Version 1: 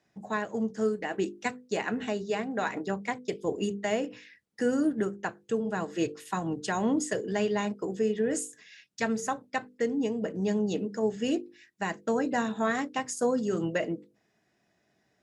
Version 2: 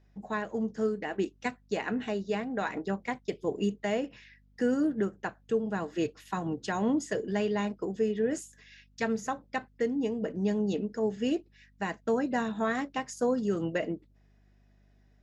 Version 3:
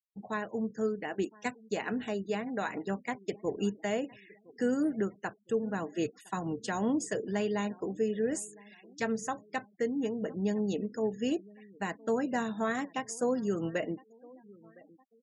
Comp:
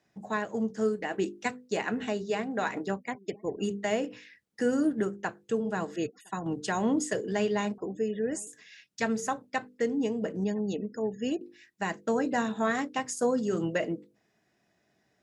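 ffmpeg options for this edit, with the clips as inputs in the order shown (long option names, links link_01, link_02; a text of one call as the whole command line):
ffmpeg -i take0.wav -i take1.wav -i take2.wav -filter_complex "[2:a]asplit=4[link_01][link_02][link_03][link_04];[0:a]asplit=5[link_05][link_06][link_07][link_08][link_09];[link_05]atrim=end=3.02[link_10];[link_01]atrim=start=2.92:end=3.69[link_11];[link_06]atrim=start=3.59:end=5.962[link_12];[link_02]atrim=start=5.958:end=6.462[link_13];[link_07]atrim=start=6.458:end=7.782[link_14];[link_03]atrim=start=7.778:end=8.472[link_15];[link_08]atrim=start=8.468:end=10.442[link_16];[link_04]atrim=start=10.438:end=11.412[link_17];[link_09]atrim=start=11.408[link_18];[link_10][link_11]acrossfade=duration=0.1:curve1=tri:curve2=tri[link_19];[link_19][link_12]acrossfade=duration=0.1:curve1=tri:curve2=tri[link_20];[link_20][link_13]acrossfade=duration=0.004:curve1=hsin:curve2=hsin[link_21];[link_21][link_14]acrossfade=duration=0.004:curve1=hsin:curve2=hsin[link_22];[link_22][link_15]acrossfade=duration=0.004:curve1=hsin:curve2=hsin[link_23];[link_23][link_16]acrossfade=duration=0.004:curve1=hsin:curve2=hsin[link_24];[link_24][link_17]acrossfade=duration=0.004:curve1=hsin:curve2=hsin[link_25];[link_25][link_18]acrossfade=duration=0.004:curve1=hsin:curve2=hsin" out.wav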